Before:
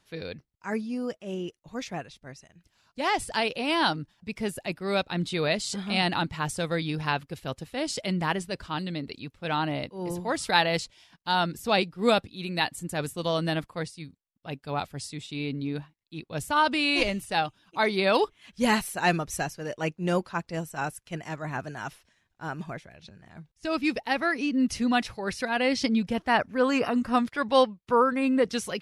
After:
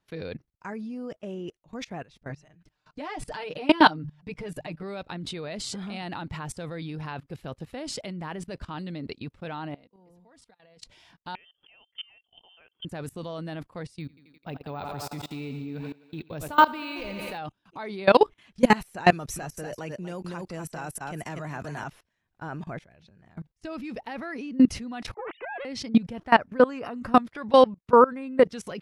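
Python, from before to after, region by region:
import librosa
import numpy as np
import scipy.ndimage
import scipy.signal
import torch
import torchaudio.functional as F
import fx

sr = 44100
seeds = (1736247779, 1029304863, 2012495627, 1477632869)

y = fx.chain(x, sr, fx.high_shelf(hz=8200.0, db=-9.0),
    fx.hum_notches(base_hz=50, count=3),
    fx.comb(ms=6.6, depth=0.96), at=(2.29, 4.83))
y = fx.chain(y, sr, fx.comb(ms=4.2, depth=0.44),
    fx.over_compress(threshold_db=-27.0, ratio=-0.5),
    fx.gate_flip(shuts_db=-30.0, range_db=-27), at=(9.74, 10.82))
y = fx.chain(y, sr, fx.peak_eq(hz=570.0, db=14.0, octaves=0.23),
    fx.gate_flip(shuts_db=-26.0, range_db=-26),
    fx.freq_invert(carrier_hz=3300), at=(11.35, 12.85))
y = fx.chain(y, sr, fx.echo_thinned(ms=85, feedback_pct=74, hz=210.0, wet_db=-9),
    fx.resample_bad(factor=2, down='none', up='hold'), at=(14.0, 17.38))
y = fx.chain(y, sr, fx.high_shelf(hz=5000.0, db=10.5),
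    fx.echo_single(ms=239, db=-9.5),
    fx.band_squash(depth_pct=40), at=(19.12, 21.84))
y = fx.chain(y, sr, fx.sine_speech(),
    fx.doppler_dist(depth_ms=0.34), at=(25.14, 25.65))
y = fx.high_shelf(y, sr, hz=2600.0, db=-9.5)
y = fx.level_steps(y, sr, step_db=22)
y = F.gain(torch.from_numpy(y), 9.0).numpy()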